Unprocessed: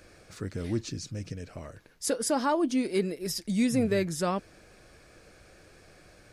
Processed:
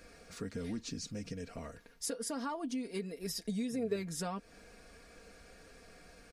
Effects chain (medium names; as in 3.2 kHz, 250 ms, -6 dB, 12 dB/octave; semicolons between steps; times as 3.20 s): comb 4.3 ms, depth 66%; compression 5:1, threshold -33 dBFS, peak gain reduction 14 dB; 3.34–3.96 s: small resonant body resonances 430/630/1700/3800 Hz, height 10 dB; trim -3 dB